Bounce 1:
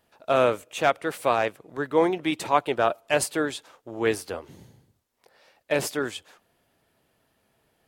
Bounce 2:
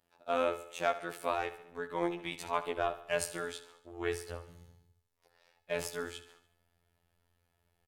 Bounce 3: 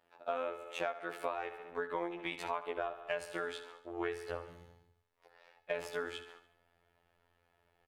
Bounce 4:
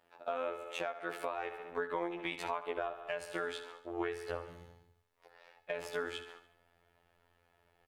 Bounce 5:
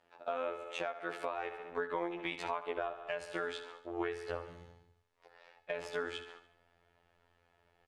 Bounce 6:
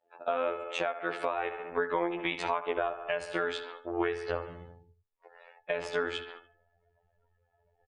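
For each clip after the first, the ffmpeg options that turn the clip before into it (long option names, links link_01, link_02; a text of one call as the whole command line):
ffmpeg -i in.wav -af "asubboost=boost=6:cutoff=100,afftfilt=real='hypot(re,im)*cos(PI*b)':imag='0':win_size=2048:overlap=0.75,aecho=1:1:72|144|216|288|360:0.2|0.106|0.056|0.0297|0.0157,volume=-6.5dB" out.wav
ffmpeg -i in.wav -af "bass=frequency=250:gain=-10,treble=frequency=4000:gain=-14,bandreject=frequency=50:width_type=h:width=6,bandreject=frequency=100:width_type=h:width=6,bandreject=frequency=150:width_type=h:width=6,bandreject=frequency=200:width_type=h:width=6,bandreject=frequency=250:width_type=h:width=6,acompressor=threshold=-40dB:ratio=12,volume=7dB" out.wav
ffmpeg -i in.wav -af "alimiter=level_in=0.5dB:limit=-24dB:level=0:latency=1:release=284,volume=-0.5dB,volume=2.5dB" out.wav
ffmpeg -i in.wav -af "lowpass=7700" out.wav
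ffmpeg -i in.wav -af "afftdn=noise_reduction=24:noise_floor=-63,volume=6.5dB" out.wav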